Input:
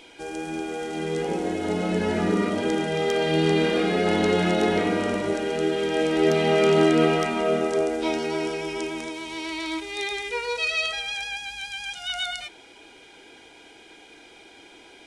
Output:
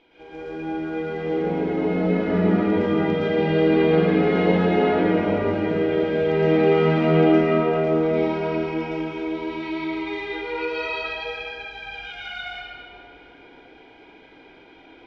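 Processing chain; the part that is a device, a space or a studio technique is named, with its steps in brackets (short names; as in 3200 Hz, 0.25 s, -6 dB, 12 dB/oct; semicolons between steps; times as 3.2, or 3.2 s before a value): air absorption 240 m; swimming-pool hall (reverb RT60 2.8 s, pre-delay 0.108 s, DRR -11 dB; high shelf 5400 Hz -6.5 dB); gain -8.5 dB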